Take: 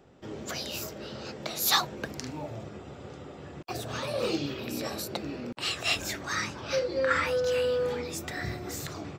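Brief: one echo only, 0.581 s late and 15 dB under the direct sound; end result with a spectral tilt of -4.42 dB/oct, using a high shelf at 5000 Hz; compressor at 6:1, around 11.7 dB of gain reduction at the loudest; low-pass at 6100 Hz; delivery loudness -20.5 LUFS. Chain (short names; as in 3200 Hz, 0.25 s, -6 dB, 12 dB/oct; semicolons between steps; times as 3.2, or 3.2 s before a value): LPF 6100 Hz; high shelf 5000 Hz -6 dB; compressor 6:1, threshold -34 dBFS; echo 0.581 s -15 dB; gain +18 dB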